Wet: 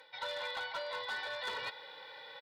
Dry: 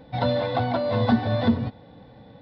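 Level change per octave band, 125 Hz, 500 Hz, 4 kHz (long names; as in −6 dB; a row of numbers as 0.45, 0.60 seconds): below −40 dB, −18.0 dB, −3.5 dB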